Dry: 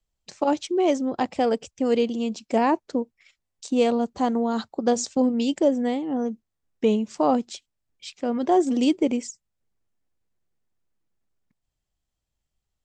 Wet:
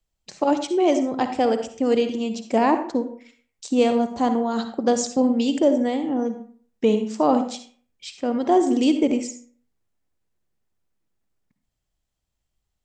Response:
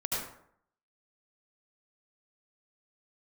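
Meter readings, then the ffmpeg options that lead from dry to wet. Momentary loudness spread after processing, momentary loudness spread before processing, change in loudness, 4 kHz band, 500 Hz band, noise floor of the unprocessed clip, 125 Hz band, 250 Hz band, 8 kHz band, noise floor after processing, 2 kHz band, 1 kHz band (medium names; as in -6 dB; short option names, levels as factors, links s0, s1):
10 LU, 10 LU, +2.0 dB, +2.0 dB, +2.0 dB, -82 dBFS, no reading, +2.0 dB, +2.0 dB, -79 dBFS, +2.5 dB, +2.5 dB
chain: -filter_complex "[0:a]asplit=2[s0][s1];[1:a]atrim=start_sample=2205,asetrate=61740,aresample=44100[s2];[s1][s2]afir=irnorm=-1:irlink=0,volume=0.355[s3];[s0][s3]amix=inputs=2:normalize=0"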